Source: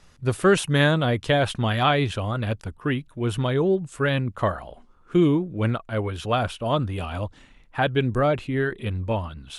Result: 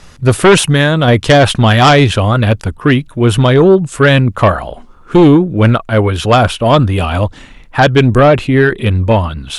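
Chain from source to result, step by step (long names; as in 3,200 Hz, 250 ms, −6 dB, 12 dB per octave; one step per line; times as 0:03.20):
0:00.56–0:01.08: downward compressor 6 to 1, threshold −22 dBFS, peak gain reduction 7.5 dB
sine wavefolder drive 7 dB, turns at −6.5 dBFS
level +5 dB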